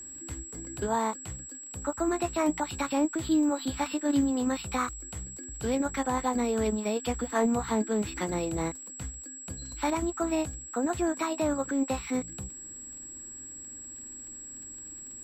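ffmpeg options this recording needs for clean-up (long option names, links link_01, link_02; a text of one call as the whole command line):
ffmpeg -i in.wav -af "adeclick=threshold=4,bandreject=frequency=7700:width=30" out.wav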